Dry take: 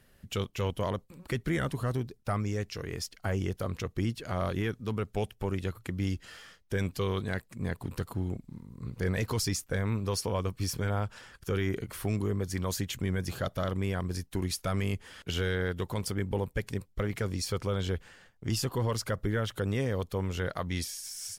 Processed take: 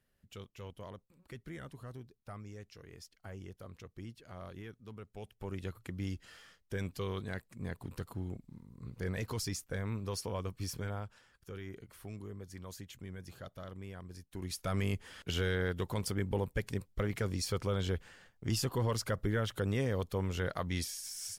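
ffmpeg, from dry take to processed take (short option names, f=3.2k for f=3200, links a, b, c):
-af "volume=5.5dB,afade=t=in:st=5.18:d=0.46:silence=0.354813,afade=t=out:st=10.78:d=0.45:silence=0.398107,afade=t=in:st=14.28:d=0.52:silence=0.237137"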